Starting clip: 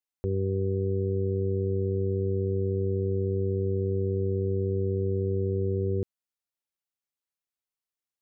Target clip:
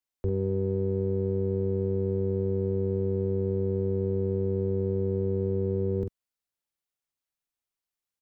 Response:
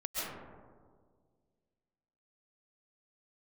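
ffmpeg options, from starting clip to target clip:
-filter_complex "[0:a]lowshelf=f=79:g=6,asplit=2[a][b];[b]adelay=46,volume=-6.5dB[c];[a][c]amix=inputs=2:normalize=0,acrossover=split=180|290[d][e][f];[e]aeval=exprs='clip(val(0),-1,0.00447)':c=same[g];[d][g][f]amix=inputs=3:normalize=0"

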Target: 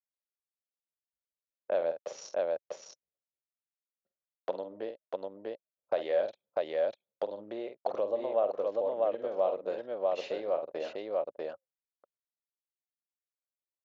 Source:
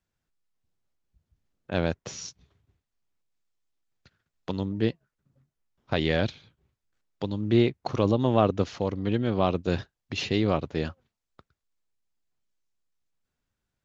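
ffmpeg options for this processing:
-filter_complex "[0:a]anlmdn=0.398,highshelf=f=2k:g=-9.5,asplit=2[a][b];[b]aecho=0:1:48|645:0.335|0.631[c];[a][c]amix=inputs=2:normalize=0,acompressor=threshold=-34dB:ratio=4,highpass=f=570:t=q:w=5.4"

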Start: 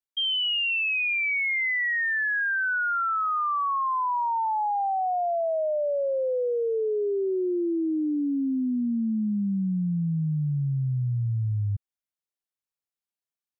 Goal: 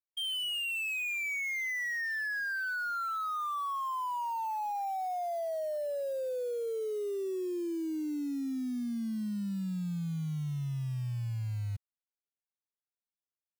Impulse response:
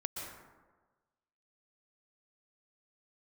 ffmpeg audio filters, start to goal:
-af "adynamicsmooth=sensitivity=5.5:basefreq=1.8k,acrusher=bits=5:mode=log:mix=0:aa=0.000001,volume=-8.5dB"

